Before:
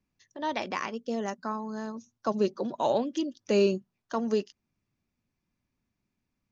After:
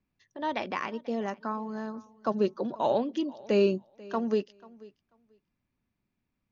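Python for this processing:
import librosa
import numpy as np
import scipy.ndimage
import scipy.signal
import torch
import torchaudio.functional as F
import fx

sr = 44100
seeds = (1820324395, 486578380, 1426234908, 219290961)

p1 = scipy.signal.sosfilt(scipy.signal.butter(2, 3800.0, 'lowpass', fs=sr, output='sos'), x)
y = p1 + fx.echo_feedback(p1, sr, ms=489, feedback_pct=16, wet_db=-22, dry=0)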